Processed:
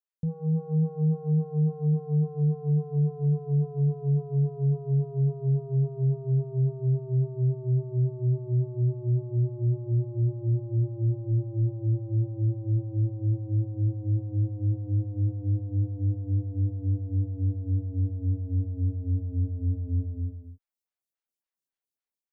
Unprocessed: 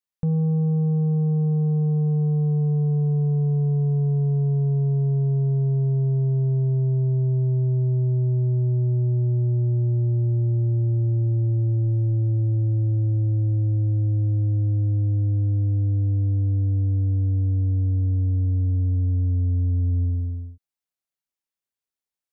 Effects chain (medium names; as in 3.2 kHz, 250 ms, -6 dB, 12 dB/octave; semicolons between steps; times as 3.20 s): level rider gain up to 5 dB; lamp-driven phase shifter 3.6 Hz; trim -5.5 dB